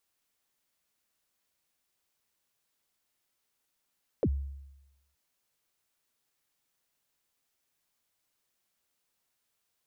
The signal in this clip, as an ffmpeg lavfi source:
-f lavfi -i "aevalsrc='0.0841*pow(10,-3*t/0.98)*sin(2*PI*(590*0.056/log(69/590)*(exp(log(69/590)*min(t,0.056)/0.056)-1)+69*max(t-0.056,0)))':d=0.92:s=44100"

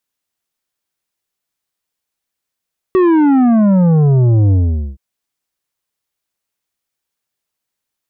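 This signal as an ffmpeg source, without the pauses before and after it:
-f lavfi -i "aevalsrc='0.376*clip((2.02-t)/0.45,0,1)*tanh(2.82*sin(2*PI*380*2.02/log(65/380)*(exp(log(65/380)*t/2.02)-1)))/tanh(2.82)':d=2.02:s=44100"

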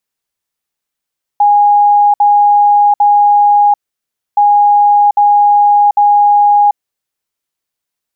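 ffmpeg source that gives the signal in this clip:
-f lavfi -i "aevalsrc='0.596*sin(2*PI*823*t)*clip(min(mod(mod(t,2.97),0.8),0.74-mod(mod(t,2.97),0.8))/0.005,0,1)*lt(mod(t,2.97),2.4)':d=5.94:s=44100"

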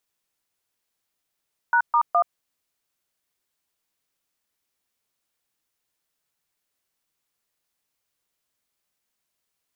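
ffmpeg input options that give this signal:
-f lavfi -i "aevalsrc='0.126*clip(min(mod(t,0.208),0.077-mod(t,0.208))/0.002,0,1)*(eq(floor(t/0.208),0)*(sin(2*PI*941*mod(t,0.208))+sin(2*PI*1477*mod(t,0.208)))+eq(floor(t/0.208),1)*(sin(2*PI*941*mod(t,0.208))+sin(2*PI*1209*mod(t,0.208)))+eq(floor(t/0.208),2)*(sin(2*PI*697*mod(t,0.208))+sin(2*PI*1209*mod(t,0.208))))':d=0.624:s=44100"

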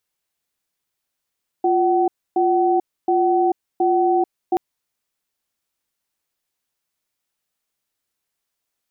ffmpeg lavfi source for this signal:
-f lavfi -i "aevalsrc='0.141*(sin(2*PI*351*t)+sin(2*PI*755*t))*clip(min(mod(t,0.72),0.44-mod(t,0.72))/0.005,0,1)':d=2.93:s=44100"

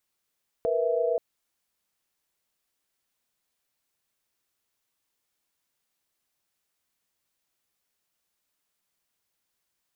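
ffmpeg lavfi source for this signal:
-f lavfi -i "aevalsrc='0.0447*(sin(2*PI*466.16*t)+sin(2*PI*493.88*t)+sin(2*PI*659.26*t))':d=0.53:s=44100"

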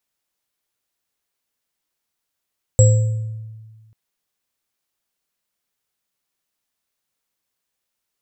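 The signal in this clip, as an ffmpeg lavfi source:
-f lavfi -i "aevalsrc='0.473*pow(10,-3*t/1.59)*sin(2*PI*110*t)+0.188*pow(10,-3*t/0.77)*sin(2*PI*516*t)+0.168*pow(10,-3*t/0.54)*sin(2*PI*7680*t)':d=1.14:s=44100"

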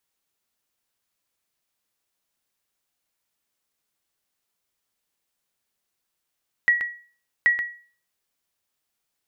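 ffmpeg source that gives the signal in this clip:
-f lavfi -i "aevalsrc='0.282*(sin(2*PI*1920*mod(t,0.78))*exp(-6.91*mod(t,0.78)/0.42)+0.422*sin(2*PI*1920*max(mod(t,0.78)-0.13,0))*exp(-6.91*max(mod(t,0.78)-0.13,0)/0.42))':d=1.56:s=44100"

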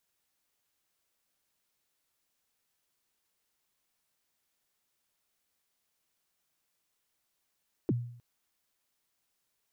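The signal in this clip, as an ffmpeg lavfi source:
-f lavfi -i "aevalsrc='0.075*pow(10,-3*t/0.62)*sin(2*PI*(420*0.033/log(120/420)*(exp(log(120/420)*min(t,0.033)/0.033)-1)+120*max(t-0.033,0)))':d=0.31:s=44100"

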